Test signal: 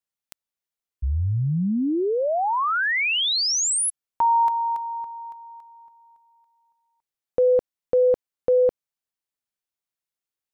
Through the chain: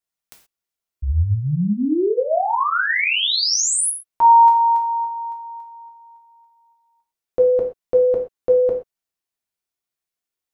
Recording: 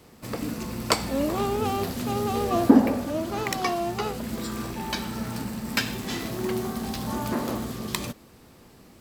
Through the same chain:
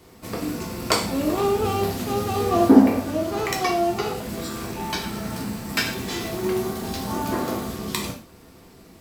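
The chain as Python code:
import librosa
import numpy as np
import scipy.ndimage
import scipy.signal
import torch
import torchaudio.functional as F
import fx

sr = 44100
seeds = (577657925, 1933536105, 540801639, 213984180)

y = fx.rev_gated(x, sr, seeds[0], gate_ms=150, shape='falling', drr_db=0.0)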